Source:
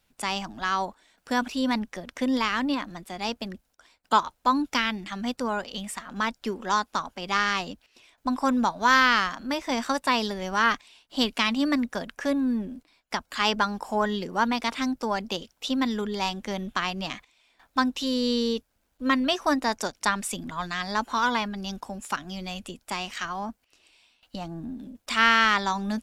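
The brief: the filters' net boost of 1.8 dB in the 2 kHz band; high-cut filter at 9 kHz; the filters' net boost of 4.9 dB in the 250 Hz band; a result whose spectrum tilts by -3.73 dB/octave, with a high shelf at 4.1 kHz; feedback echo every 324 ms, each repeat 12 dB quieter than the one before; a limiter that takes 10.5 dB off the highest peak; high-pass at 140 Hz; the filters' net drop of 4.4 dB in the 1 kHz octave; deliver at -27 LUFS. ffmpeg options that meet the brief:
-af "highpass=140,lowpass=9000,equalizer=f=250:t=o:g=6,equalizer=f=1000:t=o:g=-7.5,equalizer=f=2000:t=o:g=3.5,highshelf=f=4100:g=6.5,alimiter=limit=0.2:level=0:latency=1,aecho=1:1:324|648|972:0.251|0.0628|0.0157,volume=0.944"

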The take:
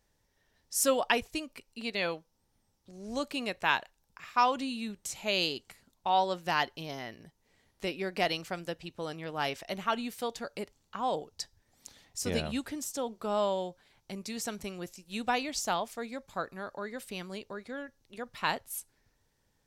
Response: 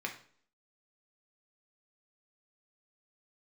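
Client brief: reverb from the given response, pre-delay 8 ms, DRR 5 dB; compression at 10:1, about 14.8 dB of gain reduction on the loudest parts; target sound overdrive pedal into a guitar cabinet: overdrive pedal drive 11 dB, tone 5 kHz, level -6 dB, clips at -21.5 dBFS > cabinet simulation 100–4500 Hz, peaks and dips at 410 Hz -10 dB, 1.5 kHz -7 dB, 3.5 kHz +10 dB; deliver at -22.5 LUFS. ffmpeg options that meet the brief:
-filter_complex "[0:a]acompressor=threshold=0.0158:ratio=10,asplit=2[s0][s1];[1:a]atrim=start_sample=2205,adelay=8[s2];[s1][s2]afir=irnorm=-1:irlink=0,volume=0.398[s3];[s0][s3]amix=inputs=2:normalize=0,asplit=2[s4][s5];[s5]highpass=f=720:p=1,volume=3.55,asoftclip=type=tanh:threshold=0.0841[s6];[s4][s6]amix=inputs=2:normalize=0,lowpass=f=5000:p=1,volume=0.501,highpass=100,equalizer=f=410:t=q:w=4:g=-10,equalizer=f=1500:t=q:w=4:g=-7,equalizer=f=3500:t=q:w=4:g=10,lowpass=f=4500:w=0.5412,lowpass=f=4500:w=1.3066,volume=6.31"

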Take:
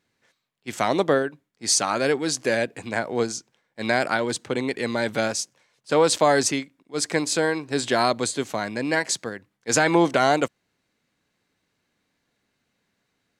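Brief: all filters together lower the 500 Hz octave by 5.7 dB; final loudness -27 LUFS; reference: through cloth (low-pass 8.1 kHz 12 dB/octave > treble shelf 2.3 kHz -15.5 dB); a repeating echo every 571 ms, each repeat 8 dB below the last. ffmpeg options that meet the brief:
-af "lowpass=8100,equalizer=f=500:t=o:g=-6,highshelf=f=2300:g=-15.5,aecho=1:1:571|1142|1713|2284|2855:0.398|0.159|0.0637|0.0255|0.0102,volume=1.19"

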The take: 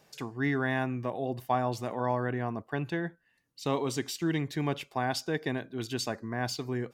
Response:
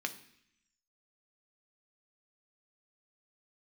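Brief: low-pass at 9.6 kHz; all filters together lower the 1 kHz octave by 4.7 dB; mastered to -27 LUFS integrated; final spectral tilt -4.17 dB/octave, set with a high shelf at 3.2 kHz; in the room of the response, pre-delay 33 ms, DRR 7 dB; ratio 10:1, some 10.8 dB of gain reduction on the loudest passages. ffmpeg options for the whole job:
-filter_complex "[0:a]lowpass=9600,equalizer=f=1000:t=o:g=-7.5,highshelf=f=3200:g=9,acompressor=threshold=0.0158:ratio=10,asplit=2[s0][s1];[1:a]atrim=start_sample=2205,adelay=33[s2];[s1][s2]afir=irnorm=-1:irlink=0,volume=0.335[s3];[s0][s3]amix=inputs=2:normalize=0,volume=4.73"

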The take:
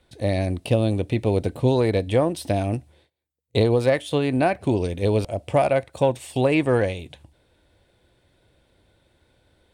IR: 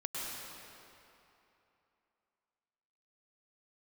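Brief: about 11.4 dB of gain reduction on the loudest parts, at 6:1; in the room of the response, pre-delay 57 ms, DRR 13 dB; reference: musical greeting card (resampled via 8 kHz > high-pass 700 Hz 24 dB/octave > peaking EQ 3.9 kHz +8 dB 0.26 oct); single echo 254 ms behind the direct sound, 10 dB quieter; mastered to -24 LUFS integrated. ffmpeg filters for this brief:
-filter_complex "[0:a]acompressor=threshold=0.0447:ratio=6,aecho=1:1:254:0.316,asplit=2[s0][s1];[1:a]atrim=start_sample=2205,adelay=57[s2];[s1][s2]afir=irnorm=-1:irlink=0,volume=0.158[s3];[s0][s3]amix=inputs=2:normalize=0,aresample=8000,aresample=44100,highpass=f=700:w=0.5412,highpass=f=700:w=1.3066,equalizer=f=3900:t=o:w=0.26:g=8,volume=6.31"

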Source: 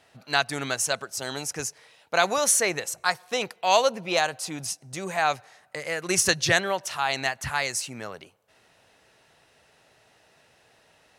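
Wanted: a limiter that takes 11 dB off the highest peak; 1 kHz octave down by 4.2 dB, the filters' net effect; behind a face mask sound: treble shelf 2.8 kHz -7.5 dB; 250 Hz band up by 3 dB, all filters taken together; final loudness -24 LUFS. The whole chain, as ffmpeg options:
-af "equalizer=f=250:t=o:g=5,equalizer=f=1000:t=o:g=-5.5,alimiter=limit=0.141:level=0:latency=1,highshelf=f=2800:g=-7.5,volume=2.66"

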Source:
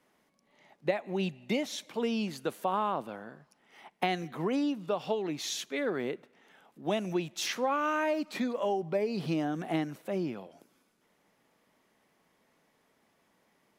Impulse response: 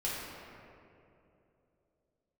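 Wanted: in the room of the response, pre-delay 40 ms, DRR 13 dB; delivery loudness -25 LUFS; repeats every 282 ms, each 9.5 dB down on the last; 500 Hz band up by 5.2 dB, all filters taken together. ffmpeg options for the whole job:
-filter_complex "[0:a]equalizer=f=500:t=o:g=6.5,aecho=1:1:282|564|846|1128:0.335|0.111|0.0365|0.012,asplit=2[s0][s1];[1:a]atrim=start_sample=2205,adelay=40[s2];[s1][s2]afir=irnorm=-1:irlink=0,volume=0.119[s3];[s0][s3]amix=inputs=2:normalize=0,volume=1.58"

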